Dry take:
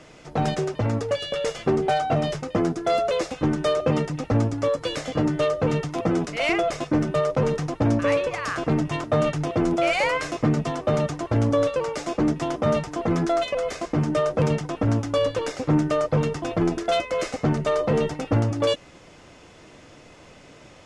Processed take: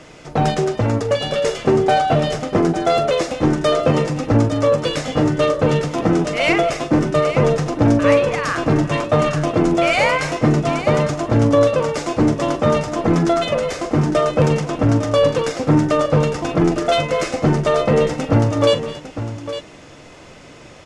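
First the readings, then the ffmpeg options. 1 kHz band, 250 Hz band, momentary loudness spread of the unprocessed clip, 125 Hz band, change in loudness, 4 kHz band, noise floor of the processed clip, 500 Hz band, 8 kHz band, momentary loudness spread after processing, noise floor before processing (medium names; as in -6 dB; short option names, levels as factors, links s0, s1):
+7.0 dB, +6.5 dB, 4 LU, +6.5 dB, +6.5 dB, +6.5 dB, -41 dBFS, +6.5 dB, +6.5 dB, 5 LU, -49 dBFS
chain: -af "aecho=1:1:42|209|252|855:0.251|0.133|0.112|0.282,volume=2"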